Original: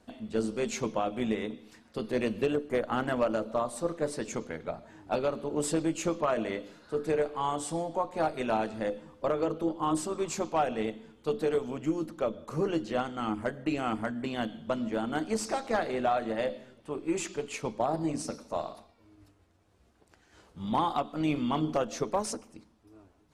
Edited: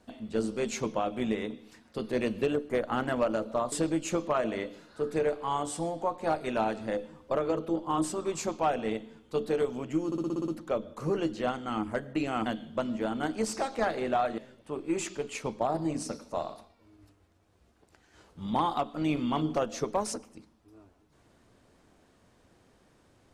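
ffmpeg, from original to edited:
-filter_complex "[0:a]asplit=11[s0][s1][s2][s3][s4][s5][s6][s7][s8][s9][s10];[s0]atrim=end=3.722[s11];[s1]atrim=start=5.648:end=12.052[s12];[s2]atrim=start=11.988:end=12.052[s13];[s3]atrim=start=11.988:end=12.052[s14];[s4]atrim=start=11.988:end=12.052[s15];[s5]atrim=start=11.988:end=12.052[s16];[s6]atrim=start=11.988:end=12.052[s17];[s7]atrim=start=11.988:end=12.052[s18];[s8]atrim=start=11.988:end=13.972[s19];[s9]atrim=start=14.378:end=16.302[s20];[s10]atrim=start=16.568[s21];[s11][s12]acrossfade=d=0.004:c1=hsin:c2=hsin[s22];[s22][s13]acrossfade=d=0.004:c1=hsin:c2=hsin[s23];[s23][s14]acrossfade=d=0.004:c1=hsin:c2=hsin[s24];[s24][s15]acrossfade=d=0.004:c1=hsin:c2=hsin[s25];[s25][s16]acrossfade=d=0.004:c1=hsin:c2=hsin[s26];[s26][s17]acrossfade=d=0.004:c1=hsin:c2=hsin[s27];[s27][s18]acrossfade=d=0.004:c1=hsin:c2=hsin[s28];[s28][s19]acrossfade=d=0.004:c1=hsin:c2=hsin[s29];[s29][s20]acrossfade=d=0.004:c1=hsin:c2=hsin[s30];[s30][s21]acrossfade=d=0.004:c1=hsin:c2=hsin"

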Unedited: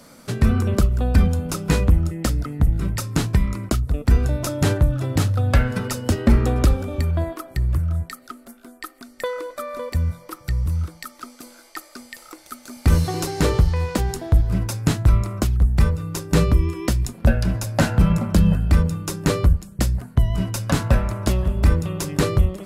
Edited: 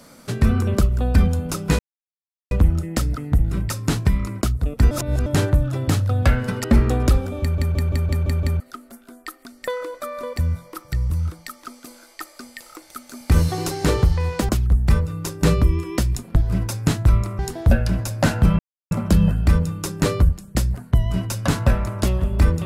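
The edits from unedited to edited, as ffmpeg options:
-filter_complex "[0:a]asplit=17[s0][s1][s2][s3][s4][s5][s6][s7][s8][s9][s10][s11][s12][s13][s14][s15][s16];[s0]atrim=end=1.79,asetpts=PTS-STARTPTS,afade=t=out:st=1.786:d=0.004:c=hsin,apad=pad_dur=0.72[s17];[s1]atrim=start=1.79:end=4.192,asetpts=PTS-STARTPTS,afade=t=in:d=0.004:c=hsin[s18];[s2]atrim=start=4.188:end=4.542,asetpts=PTS-STARTPTS,areverse[s19];[s3]atrim=start=4.538:end=5.922[s20];[s4]atrim=start=6.198:end=7.142[s21];[s5]atrim=start=6.968:end=7.142[s22];[s6]atrim=start=6.968:end=7.142[s23];[s7]atrim=start=6.968:end=7.142[s24];[s8]atrim=start=6.968:end=7.142[s25];[s9]atrim=start=6.968:end=7.142[s26];[s10]atrim=start=6.968:end=7.142[s27];[s11]atrim=start=8.158:end=14.052[s28];[s12]atrim=start=15.388:end=17.262[s29];[s13]atrim=start=14.358:end=15.392[s30];[s14]atrim=start=14.048:end=14.362[s31];[s15]atrim=start=17.258:end=18.15,asetpts=PTS-STARTPTS,afade=t=out:st=0.888:d=0.004:c=hsin,apad=pad_dur=0.32[s32];[s16]atrim=start=18.15,asetpts=PTS-STARTPTS,afade=t=in:d=0.004:c=hsin[s33];[s17][s18]concat=n=2:v=0:a=1[s34];[s34][s19]acrossfade=d=0.004:c1=hsin:c2=hsin[s35];[s35][s20]acrossfade=d=0.004:c1=hsin:c2=hsin[s36];[s36][s21]acrossfade=d=0.004:c1=hsin:c2=hsin[s37];[s37][s22]acrossfade=d=0.004:c1=hsin:c2=hsin[s38];[s38][s23]acrossfade=d=0.004:c1=hsin:c2=hsin[s39];[s39][s24]acrossfade=d=0.004:c1=hsin:c2=hsin[s40];[s40][s25]acrossfade=d=0.004:c1=hsin:c2=hsin[s41];[s41][s26]acrossfade=d=0.004:c1=hsin:c2=hsin[s42];[s42][s27]acrossfade=d=0.004:c1=hsin:c2=hsin[s43];[s43][s28]acrossfade=d=0.004:c1=hsin:c2=hsin[s44];[s44][s29]acrossfade=d=0.004:c1=hsin:c2=hsin[s45];[s45][s30]acrossfade=d=0.004:c1=hsin:c2=hsin[s46];[s46][s31]acrossfade=d=0.004:c1=hsin:c2=hsin[s47];[s32][s33]concat=n=2:v=0:a=1[s48];[s47][s48]acrossfade=d=0.004:c1=hsin:c2=hsin"

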